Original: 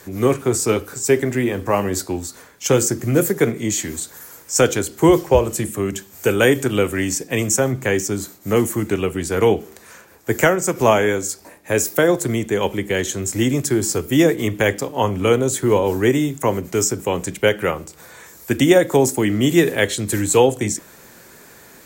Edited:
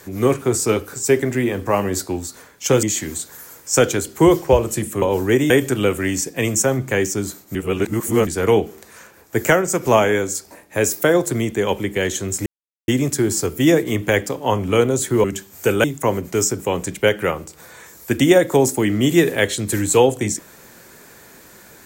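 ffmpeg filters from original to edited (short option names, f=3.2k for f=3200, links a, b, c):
-filter_complex "[0:a]asplit=9[a][b][c][d][e][f][g][h][i];[a]atrim=end=2.832[j];[b]atrim=start=3.648:end=5.842[k];[c]atrim=start=15.758:end=16.242[l];[d]atrim=start=6.438:end=8.492[m];[e]atrim=start=8.488:end=9.212,asetpts=PTS-STARTPTS,areverse[n];[f]atrim=start=9.208:end=13.4,asetpts=PTS-STARTPTS,afade=t=out:st=4.188:d=0.004:c=hsin,apad=pad_dur=0.42[o];[g]atrim=start=13.4:end=15.762,asetpts=PTS-STARTPTS,afade=t=in:d=0.004:c=hsin[p];[h]atrim=start=5.838:end=6.442[q];[i]atrim=start=16.238[r];[j][k]acrossfade=d=0.004:c1=hsin:c2=hsin[s];[s][l]acrossfade=d=0.004:c1=hsin:c2=hsin[t];[t][m]acrossfade=d=0.004:c1=hsin:c2=hsin[u];[u][n]acrossfade=d=0.004:c1=hsin:c2=hsin[v];[o][p]concat=n=2:v=0:a=1[w];[v][w]acrossfade=d=0.004:c1=hsin:c2=hsin[x];[x][q]acrossfade=d=0.004:c1=hsin:c2=hsin[y];[y][r]acrossfade=d=0.004:c1=hsin:c2=hsin"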